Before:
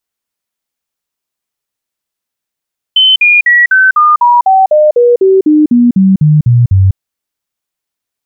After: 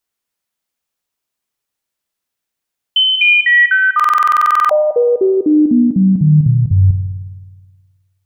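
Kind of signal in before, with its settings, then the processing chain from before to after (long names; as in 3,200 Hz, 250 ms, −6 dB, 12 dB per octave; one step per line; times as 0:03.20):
stepped sweep 3,060 Hz down, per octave 3, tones 16, 0.20 s, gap 0.05 s −3 dBFS
brickwall limiter −7.5 dBFS
spring reverb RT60 1.5 s, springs 53 ms, chirp 50 ms, DRR 8.5 dB
buffer that repeats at 0:03.95, samples 2,048, times 15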